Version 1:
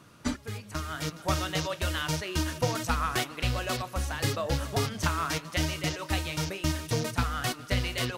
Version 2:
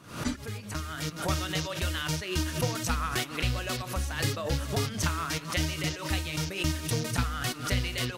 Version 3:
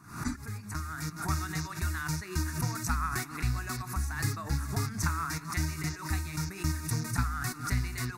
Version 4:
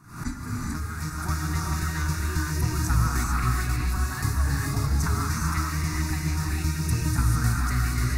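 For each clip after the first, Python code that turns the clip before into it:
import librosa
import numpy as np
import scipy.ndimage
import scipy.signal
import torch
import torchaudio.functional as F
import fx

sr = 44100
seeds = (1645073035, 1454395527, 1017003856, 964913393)

y1 = fx.dynamic_eq(x, sr, hz=770.0, q=0.82, threshold_db=-43.0, ratio=4.0, max_db=-5)
y1 = fx.pre_swell(y1, sr, db_per_s=110.0)
y2 = fx.fixed_phaser(y1, sr, hz=1300.0, stages=4)
y3 = fx.low_shelf(y2, sr, hz=90.0, db=9.0)
y3 = fx.rev_gated(y3, sr, seeds[0], gate_ms=470, shape='rising', drr_db=-2.5)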